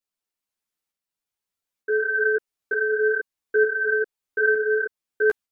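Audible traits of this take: tremolo saw up 1.1 Hz, depth 45%; a shimmering, thickened sound

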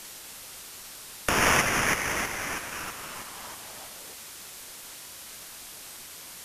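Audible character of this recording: aliases and images of a low sample rate 4100 Hz, jitter 0%; tremolo saw up 3.1 Hz, depth 60%; a quantiser's noise floor 8-bit, dither triangular; Vorbis

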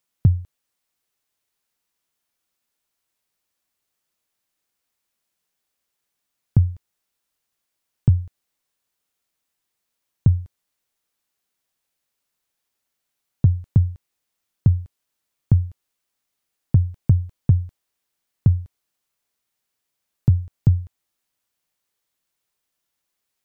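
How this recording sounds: noise floor -80 dBFS; spectral tilt -17.5 dB/oct

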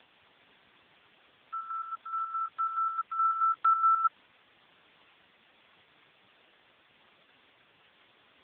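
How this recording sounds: chopped level 4.7 Hz, depth 60%, duty 55%; a quantiser's noise floor 8-bit, dither triangular; AMR-NB

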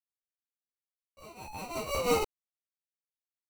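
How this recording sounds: aliases and images of a low sample rate 1700 Hz, jitter 0%; tremolo triangle 5.8 Hz, depth 75%; a quantiser's noise floor 12-bit, dither none; a shimmering, thickened sound

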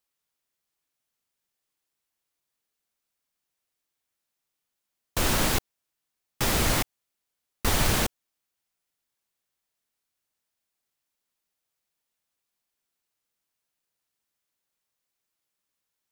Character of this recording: noise floor -84 dBFS; spectral tilt -3.0 dB/oct

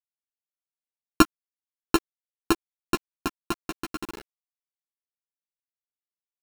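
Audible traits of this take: a buzz of ramps at a fixed pitch in blocks of 32 samples; tremolo saw up 2.2 Hz, depth 35%; a quantiser's noise floor 6-bit, dither none; a shimmering, thickened sound

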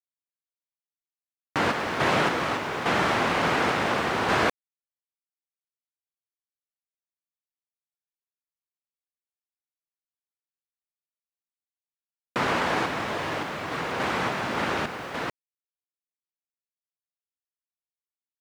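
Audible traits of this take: random-step tremolo, depth 75%; a quantiser's noise floor 10-bit, dither none

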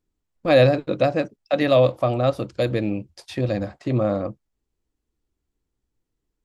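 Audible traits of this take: noise floor -80 dBFS; spectral tilt -6.0 dB/oct

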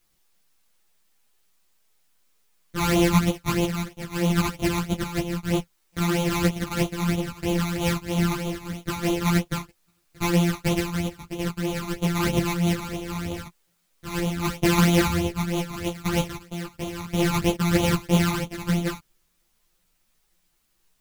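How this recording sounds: a buzz of ramps at a fixed pitch in blocks of 256 samples; phasing stages 12, 3.1 Hz, lowest notch 510–1700 Hz; a quantiser's noise floor 12-bit, dither triangular; a shimmering, thickened sound

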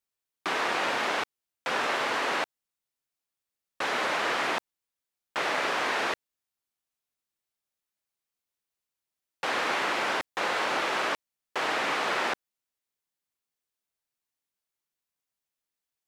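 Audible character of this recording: noise floor -89 dBFS; spectral tilt -1.5 dB/oct

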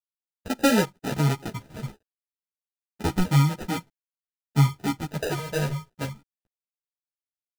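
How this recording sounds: a quantiser's noise floor 10-bit, dither none; phasing stages 8, 0.31 Hz, lowest notch 280–1400 Hz; aliases and images of a low sample rate 1100 Hz, jitter 0%; a shimmering, thickened sound

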